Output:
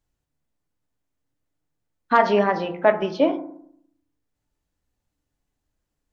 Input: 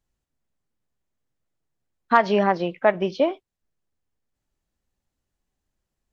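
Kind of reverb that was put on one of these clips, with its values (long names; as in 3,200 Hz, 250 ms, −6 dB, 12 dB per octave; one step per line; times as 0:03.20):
feedback delay network reverb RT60 0.65 s, low-frequency decay 1.35×, high-frequency decay 0.3×, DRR 5.5 dB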